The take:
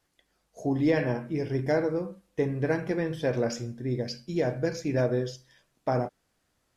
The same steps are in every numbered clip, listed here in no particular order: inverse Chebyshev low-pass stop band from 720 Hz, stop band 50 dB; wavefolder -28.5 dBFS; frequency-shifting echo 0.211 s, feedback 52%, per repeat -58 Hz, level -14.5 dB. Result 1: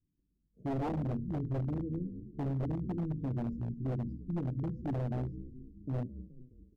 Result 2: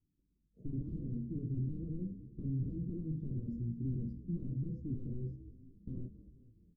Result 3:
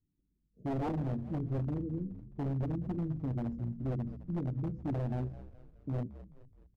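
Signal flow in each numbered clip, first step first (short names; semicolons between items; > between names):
frequency-shifting echo > inverse Chebyshev low-pass > wavefolder; wavefolder > frequency-shifting echo > inverse Chebyshev low-pass; inverse Chebyshev low-pass > wavefolder > frequency-shifting echo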